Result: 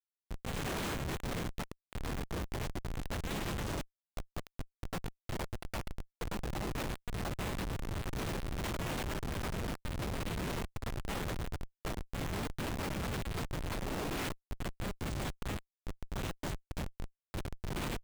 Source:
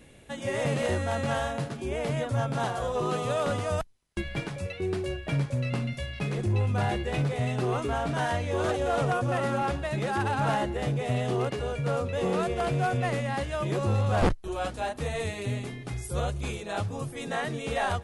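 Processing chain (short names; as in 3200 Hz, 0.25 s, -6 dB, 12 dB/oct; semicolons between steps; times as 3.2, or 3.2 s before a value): de-hum 149.3 Hz, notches 2; spectral gate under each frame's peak -25 dB weak; vibrato 0.98 Hz 7.9 cents; Schmitt trigger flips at -39 dBFS; gain +10.5 dB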